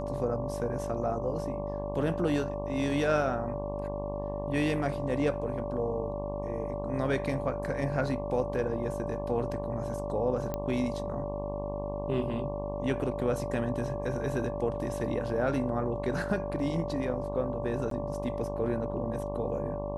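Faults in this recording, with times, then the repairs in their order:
buzz 50 Hz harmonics 23 -37 dBFS
whine 580 Hz -35 dBFS
10.54 s: pop -19 dBFS
17.90–17.91 s: dropout 13 ms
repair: de-click; de-hum 50 Hz, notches 23; band-stop 580 Hz, Q 30; interpolate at 17.90 s, 13 ms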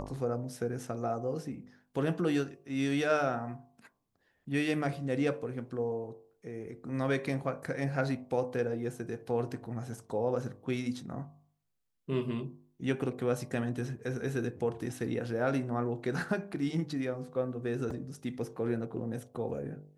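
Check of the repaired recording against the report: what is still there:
nothing left

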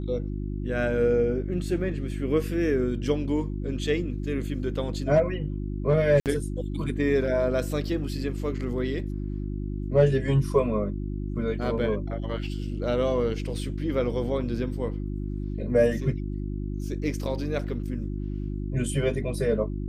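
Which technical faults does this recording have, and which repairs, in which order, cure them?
hum 50 Hz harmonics 7 -31 dBFS
6.20–6.26 s: dropout 58 ms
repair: de-hum 50 Hz, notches 7; interpolate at 6.20 s, 58 ms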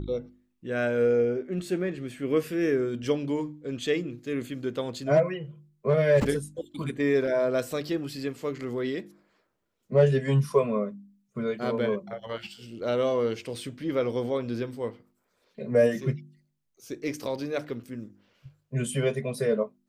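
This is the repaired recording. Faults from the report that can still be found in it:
nothing left

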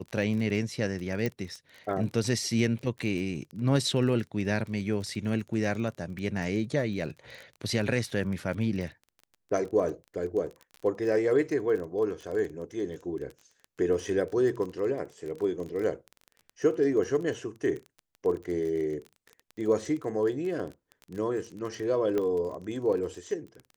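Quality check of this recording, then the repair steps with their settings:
crackle 24 per s -35 dBFS
1.26 s: pop -17 dBFS
22.18 s: pop -18 dBFS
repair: de-click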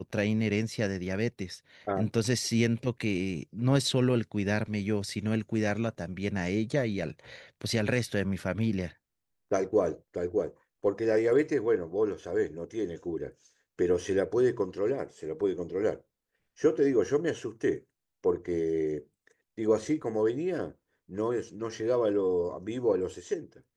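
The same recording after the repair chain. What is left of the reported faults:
nothing left

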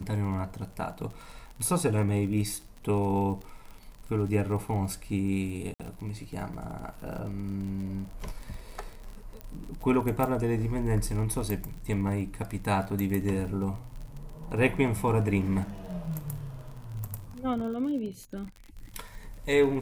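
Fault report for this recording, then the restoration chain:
crackle 46 per s -37 dBFS
5.74–5.80 s: dropout 57 ms
9.41 s: pop -24 dBFS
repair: de-click; interpolate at 5.74 s, 57 ms

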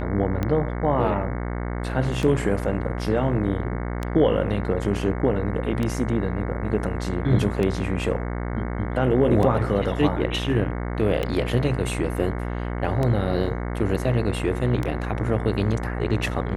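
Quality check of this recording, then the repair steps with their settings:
buzz 60 Hz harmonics 37 -28 dBFS
tick 33 1/3 rpm -13 dBFS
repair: de-click; de-hum 60 Hz, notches 37

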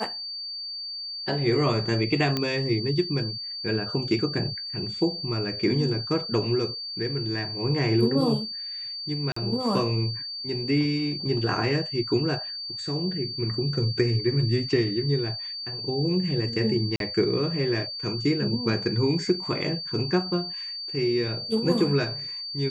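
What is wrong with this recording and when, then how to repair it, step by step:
whine 4.6 kHz -32 dBFS
2.37 s: pop -12 dBFS
9.32–9.36 s: dropout 44 ms
16.96–17.00 s: dropout 42 ms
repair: de-click; band-stop 4.6 kHz, Q 30; interpolate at 9.32 s, 44 ms; interpolate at 16.96 s, 42 ms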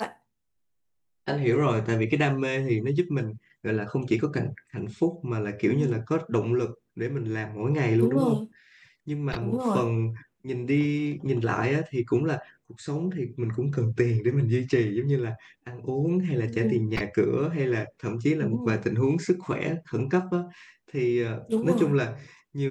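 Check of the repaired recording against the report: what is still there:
whine 4.6 kHz

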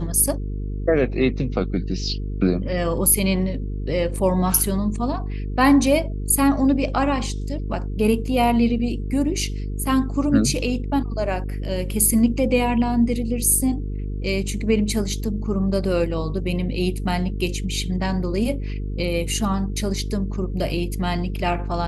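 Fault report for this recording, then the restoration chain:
buzz 50 Hz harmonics 9 -27 dBFS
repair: de-hum 50 Hz, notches 9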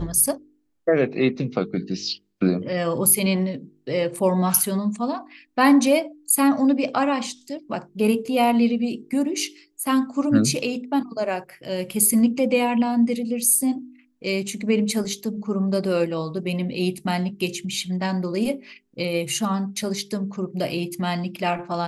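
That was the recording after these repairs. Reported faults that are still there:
nothing left

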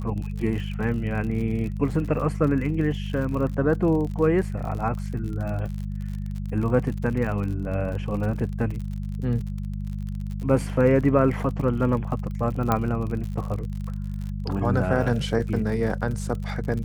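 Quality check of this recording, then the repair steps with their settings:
crackle 54 per s -32 dBFS
hum 50 Hz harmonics 4 -30 dBFS
12.72 s: pop -9 dBFS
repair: de-click; de-hum 50 Hz, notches 4

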